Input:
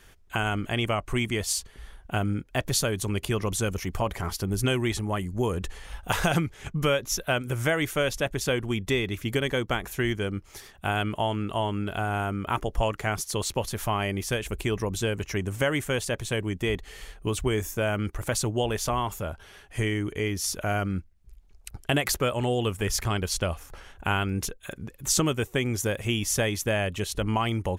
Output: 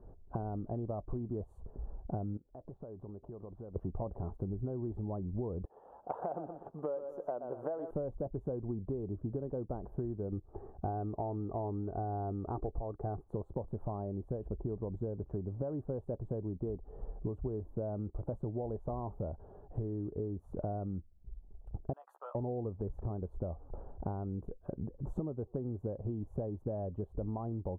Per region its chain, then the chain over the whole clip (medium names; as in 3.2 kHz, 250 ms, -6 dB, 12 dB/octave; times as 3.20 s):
2.37–3.76 s: low-pass 2.5 kHz + bass shelf 320 Hz -9.5 dB + compression 16:1, threshold -44 dBFS
5.65–7.91 s: high-pass 560 Hz + bit-crushed delay 122 ms, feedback 35%, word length 8-bit, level -10 dB
10.32–13.28 s: waveshaping leveller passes 1 + resonant high shelf 3 kHz -8 dB, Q 3 + comb 2.6 ms, depth 34%
21.93–22.35 s: gate -31 dBFS, range -16 dB + high-pass 1.1 kHz 24 dB/octave + doubling 14 ms -4 dB
whole clip: inverse Chebyshev low-pass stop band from 2 kHz, stop band 50 dB; compression 10:1, threshold -37 dBFS; trim +3 dB